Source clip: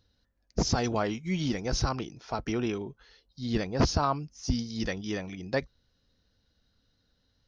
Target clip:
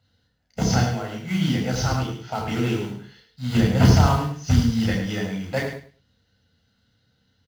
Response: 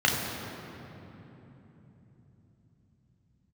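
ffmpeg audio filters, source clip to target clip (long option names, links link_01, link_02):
-filter_complex "[0:a]asettb=1/sr,asplit=3[link_01][link_02][link_03];[link_01]atrim=end=0.804[link_04];[link_02]atrim=start=0.8:end=1.21,asetpts=PTS-STARTPTS,afade=type=in:duration=0.004:curve=qsin,afade=type=out:start_time=0.406:duration=0.004:curve=qsin,acompressor=threshold=-34dB:ratio=6[link_05];[link_03]atrim=start=1.206[link_06];[link_04][link_05]acrossfade=duration=0.004:curve1=hsin:curve2=qsin[link_07];[link_07][link_06]acrossfade=duration=0.004:curve1=qsin:curve2=hsin,asettb=1/sr,asplit=3[link_08][link_09][link_10];[link_08]atrim=end=3.504[link_11];[link_09]atrim=start=3.5:end=4.9,asetpts=PTS-STARTPTS,afade=type=in:duration=0.004:curve=qsin,afade=type=out:start_time=1.396:duration=0.004:curve=qsin,lowshelf=frequency=150:gain=10[link_12];[link_10]atrim=start=4.896[link_13];[link_11][link_12]acrossfade=duration=0.004:curve1=hsin:curve2=qsin[link_14];[link_14][link_13]acrossfade=duration=0.004:curve1=qsin:curve2=hsin,acrusher=bits=3:mode=log:mix=0:aa=0.000001,aecho=1:1:105|210|315:0.398|0.0717|0.0129[link_15];[1:a]atrim=start_sample=2205,atrim=end_sample=4410[link_16];[link_15][link_16]afir=irnorm=-1:irlink=0,volume=-8.5dB"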